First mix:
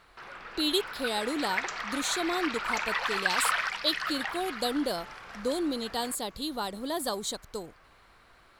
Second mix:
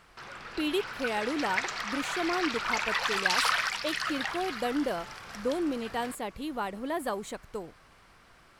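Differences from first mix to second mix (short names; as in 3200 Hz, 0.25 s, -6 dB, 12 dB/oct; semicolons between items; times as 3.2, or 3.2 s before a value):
speech: add resonant high shelf 3100 Hz -8.5 dB, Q 3; first sound: add tone controls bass +7 dB, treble +9 dB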